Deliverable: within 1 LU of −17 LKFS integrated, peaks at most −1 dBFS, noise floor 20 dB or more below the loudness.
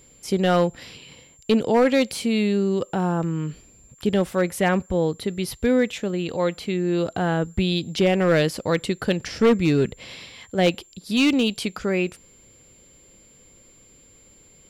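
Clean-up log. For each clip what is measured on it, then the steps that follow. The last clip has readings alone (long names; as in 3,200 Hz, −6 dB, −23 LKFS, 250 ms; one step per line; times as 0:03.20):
share of clipped samples 0.6%; peaks flattened at −11.5 dBFS; interfering tone 7,300 Hz; level of the tone −52 dBFS; integrated loudness −22.5 LKFS; sample peak −11.5 dBFS; target loudness −17.0 LKFS
→ clipped peaks rebuilt −11.5 dBFS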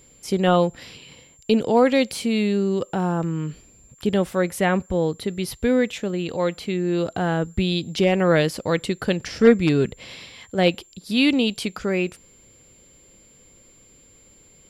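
share of clipped samples 0.0%; interfering tone 7,300 Hz; level of the tone −52 dBFS
→ notch filter 7,300 Hz, Q 30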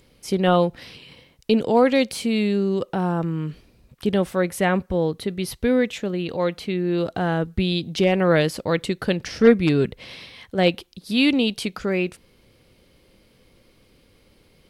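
interfering tone none found; integrated loudness −22.0 LKFS; sample peak −3.0 dBFS; target loudness −17.0 LKFS
→ level +5 dB
brickwall limiter −1 dBFS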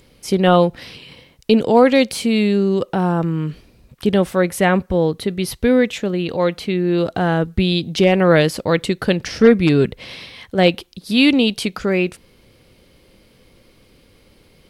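integrated loudness −17.0 LKFS; sample peak −1.0 dBFS; background noise floor −53 dBFS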